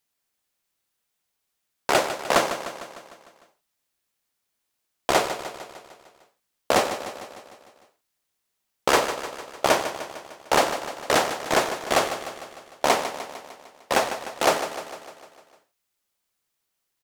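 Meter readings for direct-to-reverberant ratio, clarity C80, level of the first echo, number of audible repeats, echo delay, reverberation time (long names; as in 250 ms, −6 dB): no reverb audible, no reverb audible, −10.5 dB, 6, 151 ms, no reverb audible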